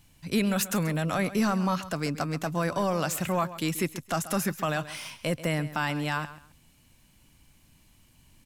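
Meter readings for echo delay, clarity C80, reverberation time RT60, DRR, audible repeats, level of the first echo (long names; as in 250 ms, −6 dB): 134 ms, no reverb audible, no reverb audible, no reverb audible, 2, −15.0 dB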